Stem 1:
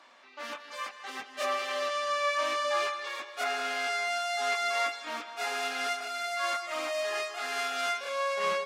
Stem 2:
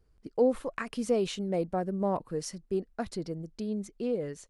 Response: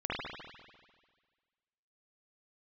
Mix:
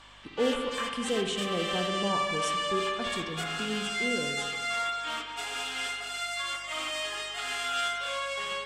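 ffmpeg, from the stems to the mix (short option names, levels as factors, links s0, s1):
-filter_complex "[0:a]alimiter=level_in=1.68:limit=0.0631:level=0:latency=1:release=397,volume=0.596,volume=1,asplit=2[s0][s1];[s1]volume=0.398[s2];[1:a]volume=0.596,asplit=2[s3][s4];[s4]volume=0.355[s5];[2:a]atrim=start_sample=2205[s6];[s2][s5]amix=inputs=2:normalize=0[s7];[s7][s6]afir=irnorm=-1:irlink=0[s8];[s0][s3][s8]amix=inputs=3:normalize=0,equalizer=f=630:t=o:w=0.33:g=-6,equalizer=f=3150:t=o:w=0.33:g=11,equalizer=f=8000:t=o:w=0.33:g=11,aeval=exprs='val(0)+0.001*(sin(2*PI*50*n/s)+sin(2*PI*2*50*n/s)/2+sin(2*PI*3*50*n/s)/3+sin(2*PI*4*50*n/s)/4+sin(2*PI*5*50*n/s)/5)':c=same"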